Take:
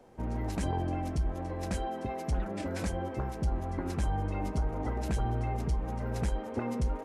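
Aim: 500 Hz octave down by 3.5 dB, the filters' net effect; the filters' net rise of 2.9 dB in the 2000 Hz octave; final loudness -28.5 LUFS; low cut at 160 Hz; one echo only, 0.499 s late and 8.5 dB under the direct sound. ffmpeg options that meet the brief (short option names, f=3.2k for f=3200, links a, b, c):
-af "highpass=160,equalizer=f=500:t=o:g=-4.5,equalizer=f=2k:t=o:g=4,aecho=1:1:499:0.376,volume=9.5dB"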